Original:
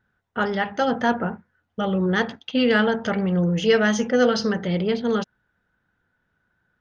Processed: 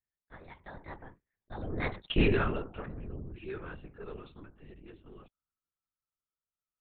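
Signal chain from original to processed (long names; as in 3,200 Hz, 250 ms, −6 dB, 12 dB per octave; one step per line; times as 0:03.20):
source passing by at 0:02.11, 54 m/s, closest 4.8 metres
linear-prediction vocoder at 8 kHz whisper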